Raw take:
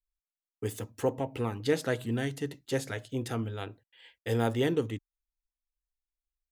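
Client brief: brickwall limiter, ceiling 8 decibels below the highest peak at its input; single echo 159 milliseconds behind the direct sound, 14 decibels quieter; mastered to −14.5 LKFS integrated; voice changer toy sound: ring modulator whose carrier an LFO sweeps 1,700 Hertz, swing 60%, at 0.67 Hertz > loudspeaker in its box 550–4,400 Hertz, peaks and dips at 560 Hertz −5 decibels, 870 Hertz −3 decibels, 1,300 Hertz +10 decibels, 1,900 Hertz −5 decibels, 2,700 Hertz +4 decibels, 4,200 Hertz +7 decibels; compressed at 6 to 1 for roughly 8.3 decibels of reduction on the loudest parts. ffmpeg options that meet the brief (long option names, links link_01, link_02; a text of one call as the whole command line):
ffmpeg -i in.wav -af "acompressor=threshold=-31dB:ratio=6,alimiter=level_in=5.5dB:limit=-24dB:level=0:latency=1,volume=-5.5dB,aecho=1:1:159:0.2,aeval=exprs='val(0)*sin(2*PI*1700*n/s+1700*0.6/0.67*sin(2*PI*0.67*n/s))':channel_layout=same,highpass=550,equalizer=frequency=560:width_type=q:width=4:gain=-5,equalizer=frequency=870:width_type=q:width=4:gain=-3,equalizer=frequency=1300:width_type=q:width=4:gain=10,equalizer=frequency=1900:width_type=q:width=4:gain=-5,equalizer=frequency=2700:width_type=q:width=4:gain=4,equalizer=frequency=4200:width_type=q:width=4:gain=7,lowpass=frequency=4400:width=0.5412,lowpass=frequency=4400:width=1.3066,volume=25dB" out.wav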